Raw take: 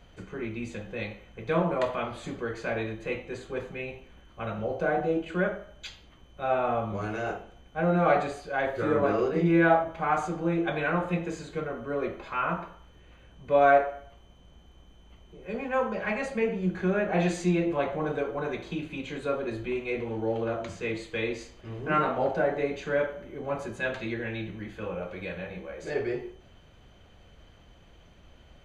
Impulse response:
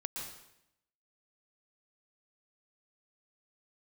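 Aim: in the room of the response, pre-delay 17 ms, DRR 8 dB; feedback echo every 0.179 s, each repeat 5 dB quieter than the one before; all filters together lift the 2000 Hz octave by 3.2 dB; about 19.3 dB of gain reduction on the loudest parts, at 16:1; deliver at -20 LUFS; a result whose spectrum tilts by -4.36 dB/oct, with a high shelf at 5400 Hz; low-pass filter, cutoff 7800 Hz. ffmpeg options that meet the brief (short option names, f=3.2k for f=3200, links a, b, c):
-filter_complex "[0:a]lowpass=7.8k,equalizer=f=2k:t=o:g=3.5,highshelf=f=5.4k:g=8,acompressor=threshold=-34dB:ratio=16,aecho=1:1:179|358|537|716|895|1074|1253:0.562|0.315|0.176|0.0988|0.0553|0.031|0.0173,asplit=2[a][b];[1:a]atrim=start_sample=2205,adelay=17[c];[b][c]afir=irnorm=-1:irlink=0,volume=-8.5dB[d];[a][d]amix=inputs=2:normalize=0,volume=17dB"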